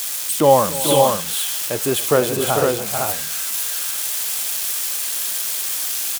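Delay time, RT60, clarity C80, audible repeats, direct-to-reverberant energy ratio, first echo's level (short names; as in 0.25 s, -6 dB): 0.281 s, none, none, 3, none, -17.0 dB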